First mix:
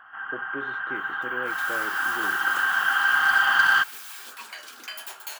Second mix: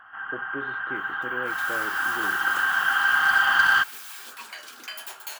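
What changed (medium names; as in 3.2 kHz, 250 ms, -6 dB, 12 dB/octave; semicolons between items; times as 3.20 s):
speech: add distance through air 98 m; master: add bass shelf 110 Hz +7.5 dB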